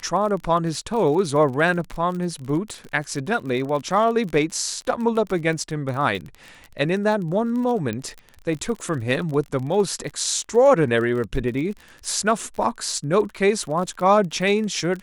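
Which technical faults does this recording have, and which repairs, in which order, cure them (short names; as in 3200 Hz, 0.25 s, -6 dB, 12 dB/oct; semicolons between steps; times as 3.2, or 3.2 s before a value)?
crackle 32/s -29 dBFS
7.93 pop -15 dBFS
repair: de-click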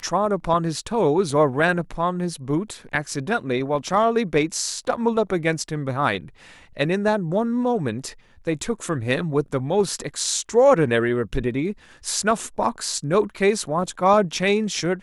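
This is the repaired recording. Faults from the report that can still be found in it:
7.93 pop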